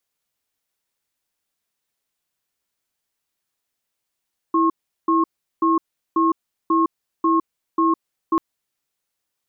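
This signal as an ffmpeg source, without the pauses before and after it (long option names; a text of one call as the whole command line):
ffmpeg -f lavfi -i "aevalsrc='0.141*(sin(2*PI*328*t)+sin(2*PI*1080*t))*clip(min(mod(t,0.54),0.16-mod(t,0.54))/0.005,0,1)':duration=3.84:sample_rate=44100" out.wav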